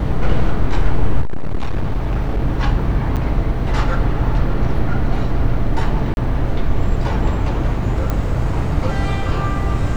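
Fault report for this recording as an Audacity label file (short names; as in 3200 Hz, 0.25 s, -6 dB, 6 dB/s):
1.210000	2.420000	clipped -13.5 dBFS
3.160000	3.170000	gap 7.8 ms
6.140000	6.170000	gap 31 ms
8.100000	8.100000	pop -8 dBFS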